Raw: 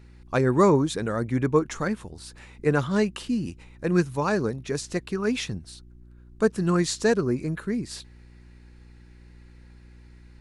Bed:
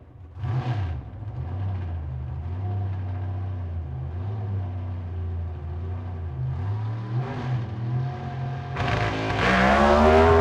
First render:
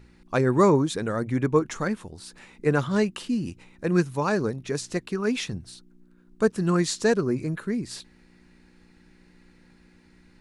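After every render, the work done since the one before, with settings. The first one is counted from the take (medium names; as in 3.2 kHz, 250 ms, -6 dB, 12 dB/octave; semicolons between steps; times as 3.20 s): de-hum 60 Hz, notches 2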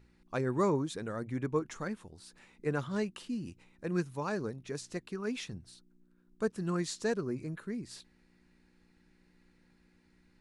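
trim -10.5 dB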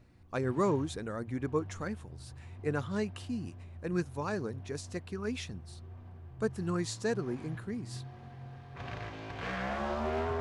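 add bed -17 dB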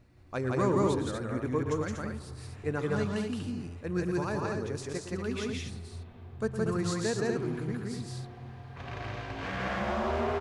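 loudspeakers at several distances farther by 39 m -11 dB, 58 m -1 dB, 82 m -5 dB; spring tank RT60 3.1 s, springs 31/36 ms, chirp 35 ms, DRR 15.5 dB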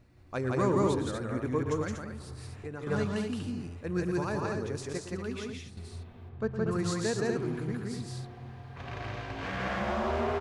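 1.97–2.87 s: compression, threshold -35 dBFS; 4.97–5.77 s: fade out, to -9 dB; 6.29–6.71 s: distance through air 170 m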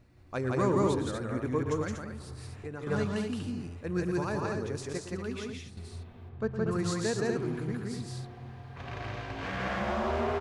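no audible change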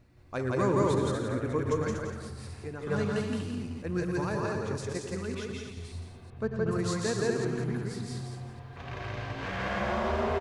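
chunks repeated in reverse 191 ms, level -9 dB; on a send: delay 171 ms -7.5 dB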